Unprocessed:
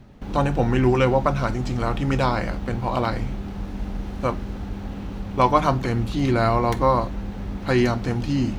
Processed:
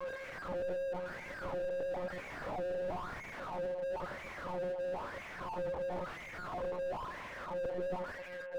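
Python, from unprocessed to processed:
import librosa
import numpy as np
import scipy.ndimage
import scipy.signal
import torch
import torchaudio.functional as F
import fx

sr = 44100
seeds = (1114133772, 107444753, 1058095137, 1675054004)

y = fx.fade_out_tail(x, sr, length_s=2.16)
y = fx.high_shelf(y, sr, hz=2400.0, db=8.0)
y = fx.over_compress(y, sr, threshold_db=-23.0, ratio=-0.5)
y = y + 10.0 ** (-27.0 / 20.0) * np.sin(2.0 * np.pi * 530.0 * np.arange(len(y)) / sr)
y = fx.filter_sweep_highpass(y, sr, from_hz=340.0, to_hz=860.0, start_s=0.2, end_s=3.07, q=1.9)
y = fx.fuzz(y, sr, gain_db=33.0, gate_db=-40.0)
y = fx.chorus_voices(y, sr, voices=4, hz=0.92, base_ms=27, depth_ms=3.0, mix_pct=50)
y = fx.wah_lfo(y, sr, hz=1.0, low_hz=430.0, high_hz=2200.0, q=8.4)
y = fx.echo_thinned(y, sr, ms=82, feedback_pct=55, hz=250.0, wet_db=-14.5)
y = fx.lpc_monotone(y, sr, seeds[0], pitch_hz=180.0, order=16)
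y = fx.slew_limit(y, sr, full_power_hz=10.0)
y = y * librosa.db_to_amplitude(-1.0)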